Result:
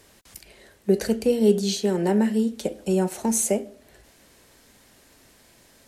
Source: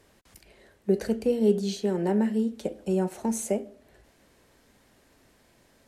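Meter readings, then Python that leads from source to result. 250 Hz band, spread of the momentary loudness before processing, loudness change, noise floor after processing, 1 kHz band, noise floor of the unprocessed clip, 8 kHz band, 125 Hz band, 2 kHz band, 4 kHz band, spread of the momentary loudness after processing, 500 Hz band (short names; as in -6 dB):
+3.5 dB, 8 LU, +4.0 dB, -56 dBFS, +4.0 dB, -63 dBFS, +10.5 dB, +3.5 dB, +6.0 dB, +9.0 dB, 8 LU, +3.5 dB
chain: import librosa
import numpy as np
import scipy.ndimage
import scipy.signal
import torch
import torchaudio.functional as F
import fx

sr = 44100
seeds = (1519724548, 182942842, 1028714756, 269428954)

y = fx.high_shelf(x, sr, hz=2800.0, db=8.0)
y = y * librosa.db_to_amplitude(3.5)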